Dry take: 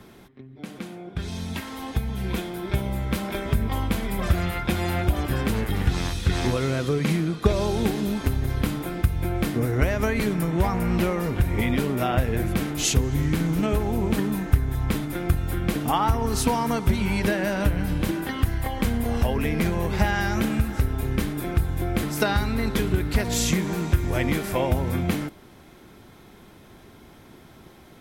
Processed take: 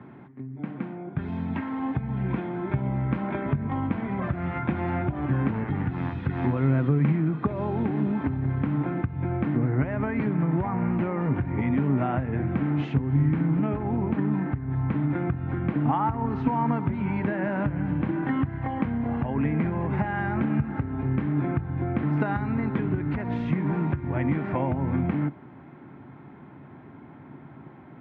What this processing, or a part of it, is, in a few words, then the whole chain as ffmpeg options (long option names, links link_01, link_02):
bass amplifier: -af "acompressor=threshold=-24dB:ratio=6,highpass=frequency=85:width=0.5412,highpass=frequency=85:width=1.3066,equalizer=frequency=140:width_type=q:width=4:gain=10,equalizer=frequency=270:width_type=q:width=4:gain=8,equalizer=frequency=470:width_type=q:width=4:gain=-4,equalizer=frequency=900:width_type=q:width=4:gain=5,lowpass=frequency=2100:width=0.5412,lowpass=frequency=2100:width=1.3066"